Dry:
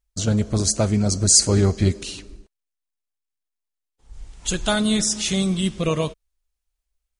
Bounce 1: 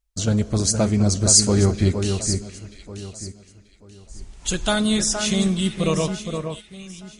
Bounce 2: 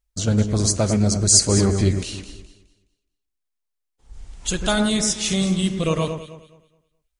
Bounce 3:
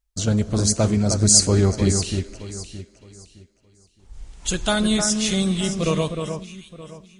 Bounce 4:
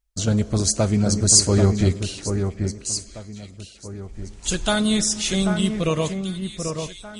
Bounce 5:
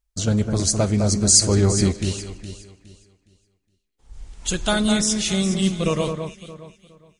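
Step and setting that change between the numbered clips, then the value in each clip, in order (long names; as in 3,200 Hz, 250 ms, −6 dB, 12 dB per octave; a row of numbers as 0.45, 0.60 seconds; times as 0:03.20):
delay that swaps between a low-pass and a high-pass, delay time: 467, 105, 308, 788, 207 milliseconds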